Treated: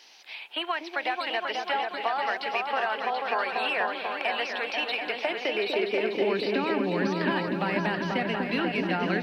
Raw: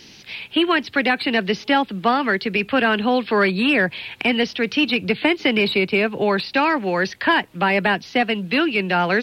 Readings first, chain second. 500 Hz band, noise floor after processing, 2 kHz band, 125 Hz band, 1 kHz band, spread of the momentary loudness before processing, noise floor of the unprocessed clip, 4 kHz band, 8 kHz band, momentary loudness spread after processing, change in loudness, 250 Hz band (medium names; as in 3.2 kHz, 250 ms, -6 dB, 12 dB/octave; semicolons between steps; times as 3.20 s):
-7.0 dB, -44 dBFS, -9.5 dB, -7.0 dB, -6.5 dB, 3 LU, -45 dBFS, -9.0 dB, no reading, 3 LU, -8.5 dB, -10.5 dB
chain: high-pass sweep 750 Hz -> 70 Hz, 4.95–8.09 s; compression, threshold -17 dBFS, peak gain reduction 8.5 dB; delay with an opening low-pass 244 ms, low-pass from 400 Hz, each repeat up 2 oct, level 0 dB; trim -8.5 dB